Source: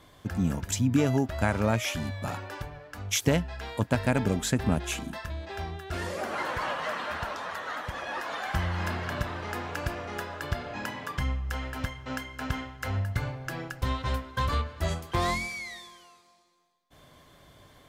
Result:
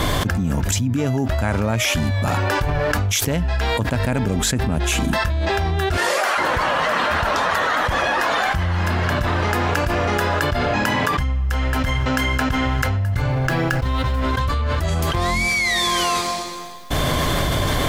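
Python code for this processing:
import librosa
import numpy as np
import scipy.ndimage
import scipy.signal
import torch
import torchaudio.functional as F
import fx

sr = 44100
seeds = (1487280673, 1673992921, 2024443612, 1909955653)

y = fx.highpass(x, sr, hz=fx.line((5.96, 460.0), (6.37, 1100.0)), slope=12, at=(5.96, 6.37), fade=0.02)
y = fx.median_filter(y, sr, points=5, at=(13.3, 14.22))
y = fx.low_shelf(y, sr, hz=69.0, db=8.5)
y = fx.env_flatten(y, sr, amount_pct=100)
y = F.gain(torch.from_numpy(y), -1.5).numpy()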